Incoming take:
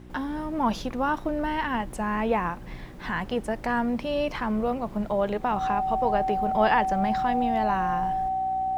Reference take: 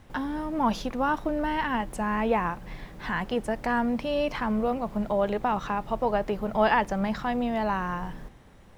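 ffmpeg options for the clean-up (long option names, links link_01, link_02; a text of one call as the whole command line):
ffmpeg -i in.wav -af "bandreject=frequency=61.3:width_type=h:width=4,bandreject=frequency=122.6:width_type=h:width=4,bandreject=frequency=183.9:width_type=h:width=4,bandreject=frequency=245.2:width_type=h:width=4,bandreject=frequency=306.5:width_type=h:width=4,bandreject=frequency=367.8:width_type=h:width=4,bandreject=frequency=760:width=30" out.wav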